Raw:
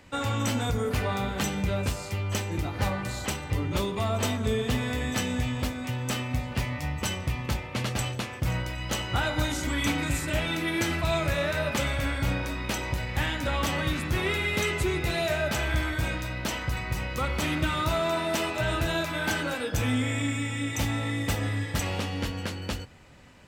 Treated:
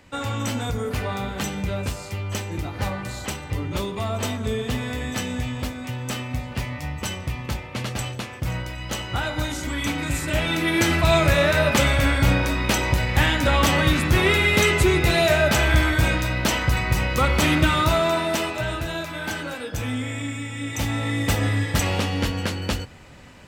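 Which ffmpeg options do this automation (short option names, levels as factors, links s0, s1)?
-af "volume=7.08,afade=t=in:st=9.95:d=1.2:silence=0.398107,afade=t=out:st=17.53:d=1.28:silence=0.316228,afade=t=in:st=20.52:d=0.92:silence=0.398107"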